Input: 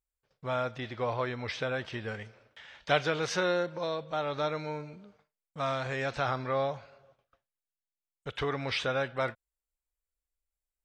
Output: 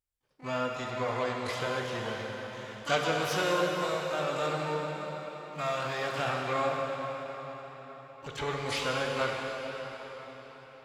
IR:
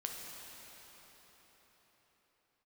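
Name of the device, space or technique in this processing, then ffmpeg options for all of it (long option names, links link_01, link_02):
shimmer-style reverb: -filter_complex "[0:a]asplit=3[link_01][link_02][link_03];[link_01]afade=type=out:start_time=4.87:duration=0.02[link_04];[link_02]highpass=frequency=93:width=0.5412,highpass=frequency=93:width=1.3066,afade=type=in:start_time=4.87:duration=0.02,afade=type=out:start_time=6.24:duration=0.02[link_05];[link_03]afade=type=in:start_time=6.24:duration=0.02[link_06];[link_04][link_05][link_06]amix=inputs=3:normalize=0,asplit=2[link_07][link_08];[link_08]asetrate=88200,aresample=44100,atempo=0.5,volume=-7dB[link_09];[link_07][link_09]amix=inputs=2:normalize=0[link_10];[1:a]atrim=start_sample=2205[link_11];[link_10][link_11]afir=irnorm=-1:irlink=0"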